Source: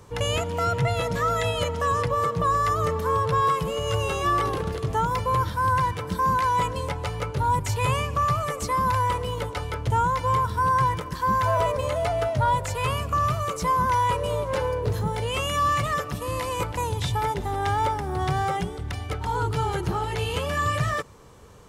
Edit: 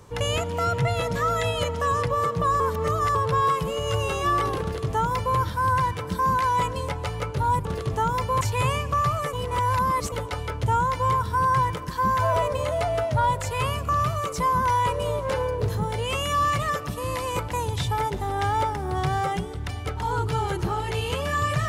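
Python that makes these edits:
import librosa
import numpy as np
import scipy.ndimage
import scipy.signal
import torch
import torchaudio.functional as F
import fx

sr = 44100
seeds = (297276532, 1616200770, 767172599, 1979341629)

y = fx.edit(x, sr, fx.reverse_span(start_s=2.6, length_s=0.55),
    fx.duplicate(start_s=4.62, length_s=0.76, to_s=7.65),
    fx.reverse_span(start_s=8.57, length_s=0.79), tone=tone)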